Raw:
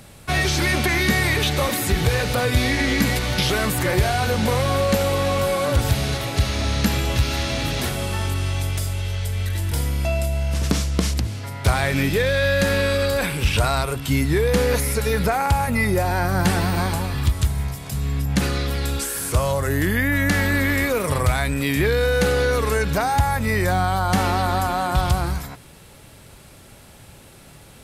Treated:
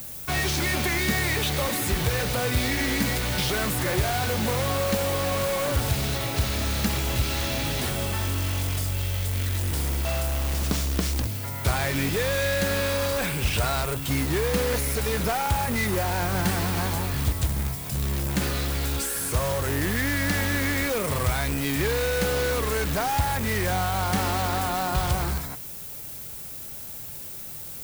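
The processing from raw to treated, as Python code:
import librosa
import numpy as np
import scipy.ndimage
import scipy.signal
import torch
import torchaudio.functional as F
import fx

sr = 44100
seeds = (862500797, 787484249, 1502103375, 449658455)

p1 = (np.mod(10.0 ** (18.5 / 20.0) * x + 1.0, 2.0) - 1.0) / 10.0 ** (18.5 / 20.0)
p2 = x + (p1 * librosa.db_to_amplitude(-5.0))
p3 = fx.dmg_noise_colour(p2, sr, seeds[0], colour='violet', level_db=-32.0)
y = p3 * librosa.db_to_amplitude(-6.0)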